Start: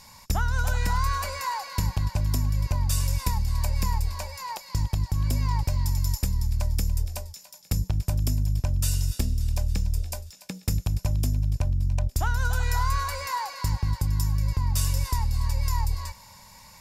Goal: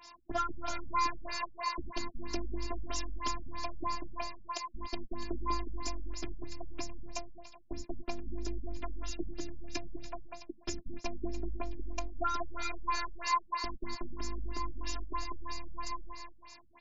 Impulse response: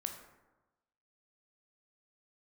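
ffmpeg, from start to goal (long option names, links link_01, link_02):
-filter_complex "[0:a]highpass=140,afftfilt=real='hypot(re,im)*cos(PI*b)':imag='0':win_size=512:overlap=0.75,crystalizer=i=0.5:c=0,aeval=exprs='0.141*(abs(mod(val(0)/0.141+3,4)-2)-1)':channel_layout=same,asplit=2[link_01][link_02];[link_02]adelay=194,lowpass=frequency=3300:poles=1,volume=-4dB,asplit=2[link_03][link_04];[link_04]adelay=194,lowpass=frequency=3300:poles=1,volume=0.28,asplit=2[link_05][link_06];[link_06]adelay=194,lowpass=frequency=3300:poles=1,volume=0.28,asplit=2[link_07][link_08];[link_08]adelay=194,lowpass=frequency=3300:poles=1,volume=0.28[link_09];[link_01][link_03][link_05][link_07][link_09]amix=inputs=5:normalize=0,afftfilt=real='re*lt(b*sr/1024,250*pow(7600/250,0.5+0.5*sin(2*PI*3.1*pts/sr)))':imag='im*lt(b*sr/1024,250*pow(7600/250,0.5+0.5*sin(2*PI*3.1*pts/sr)))':win_size=1024:overlap=0.75,volume=2.5dB"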